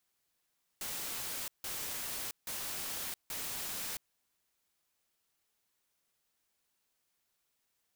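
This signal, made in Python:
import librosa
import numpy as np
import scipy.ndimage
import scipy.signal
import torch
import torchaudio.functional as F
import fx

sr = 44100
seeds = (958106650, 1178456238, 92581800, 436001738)

y = fx.noise_burst(sr, seeds[0], colour='white', on_s=0.67, off_s=0.16, bursts=4, level_db=-39.5)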